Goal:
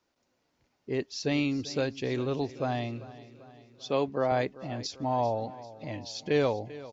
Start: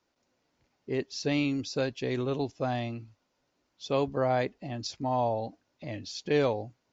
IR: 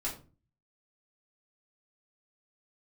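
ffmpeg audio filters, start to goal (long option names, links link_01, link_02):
-filter_complex "[0:a]asettb=1/sr,asplit=3[link_01][link_02][link_03];[link_01]atrim=end=3.864[link_04];[link_02]atrim=start=3.86:end=4.32,asetpts=PTS-STARTPTS,afade=type=in:duration=0.004:curve=qsin,afade=type=out:start_time=0.456:duration=0.004:curve=qsin,highpass=150,lowpass=6500[link_05];[link_03]atrim=start=4.316[link_06];[link_04][link_05]acrossfade=duration=0.004:curve1=hsin:curve2=qsin[link_07];[link_07][link_06]acrossfade=duration=0.004:curve1=qsin:curve2=hsin,aecho=1:1:392|784|1176|1568|1960:0.133|0.0733|0.0403|0.0222|0.0122"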